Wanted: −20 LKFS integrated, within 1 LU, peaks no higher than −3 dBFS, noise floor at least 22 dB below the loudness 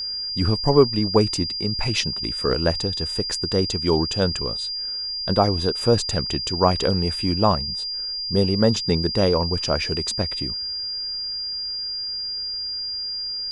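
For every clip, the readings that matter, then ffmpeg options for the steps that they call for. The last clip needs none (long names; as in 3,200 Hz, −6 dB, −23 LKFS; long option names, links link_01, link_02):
interfering tone 4,800 Hz; level of the tone −26 dBFS; integrated loudness −22.0 LKFS; sample peak −2.0 dBFS; target loudness −20.0 LKFS
→ -af "bandreject=frequency=4800:width=30"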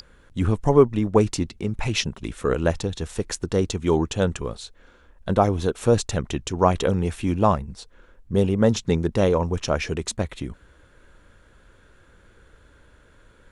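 interfering tone none found; integrated loudness −23.0 LKFS; sample peak −2.0 dBFS; target loudness −20.0 LKFS
→ -af "volume=3dB,alimiter=limit=-3dB:level=0:latency=1"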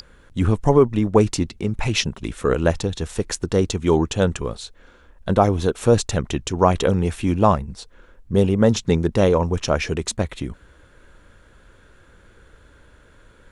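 integrated loudness −20.5 LKFS; sample peak −3.0 dBFS; background noise floor −52 dBFS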